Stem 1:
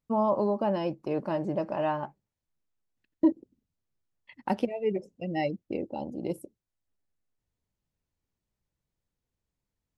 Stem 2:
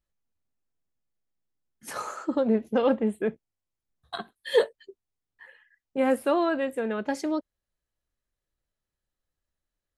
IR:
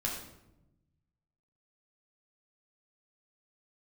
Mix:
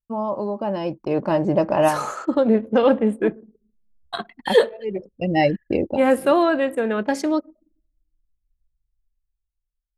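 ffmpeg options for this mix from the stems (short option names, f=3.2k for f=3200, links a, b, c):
-filter_complex "[0:a]asubboost=boost=2.5:cutoff=100,volume=0dB[a];[1:a]volume=-6.5dB,asplit=3[b][c][d];[c]volume=-21.5dB[e];[d]apad=whole_len=439897[f];[a][f]sidechaincompress=threshold=-47dB:ratio=8:attack=21:release=328[g];[2:a]atrim=start_sample=2205[h];[e][h]afir=irnorm=-1:irlink=0[i];[g][b][i]amix=inputs=3:normalize=0,anlmdn=0.001,dynaudnorm=f=170:g=13:m=13dB"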